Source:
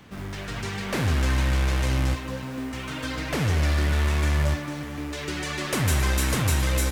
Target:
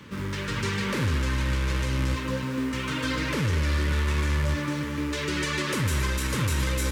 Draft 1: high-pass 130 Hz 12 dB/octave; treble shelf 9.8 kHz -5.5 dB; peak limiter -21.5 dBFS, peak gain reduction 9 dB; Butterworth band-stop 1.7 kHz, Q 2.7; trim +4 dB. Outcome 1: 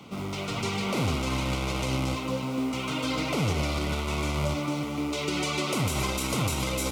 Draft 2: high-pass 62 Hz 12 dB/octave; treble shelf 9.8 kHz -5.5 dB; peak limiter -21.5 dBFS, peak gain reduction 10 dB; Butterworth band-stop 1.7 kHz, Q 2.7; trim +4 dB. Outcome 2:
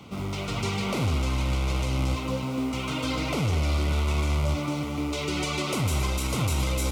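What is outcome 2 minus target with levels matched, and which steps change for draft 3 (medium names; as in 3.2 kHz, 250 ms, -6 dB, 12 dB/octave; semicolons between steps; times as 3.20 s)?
2 kHz band -4.5 dB
change: Butterworth band-stop 720 Hz, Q 2.7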